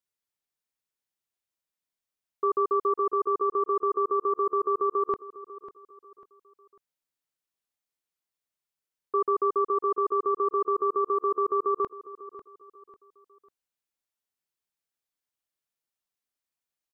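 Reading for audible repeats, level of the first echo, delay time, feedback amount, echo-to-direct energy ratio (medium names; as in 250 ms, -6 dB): 3, -15.5 dB, 546 ms, 35%, -15.0 dB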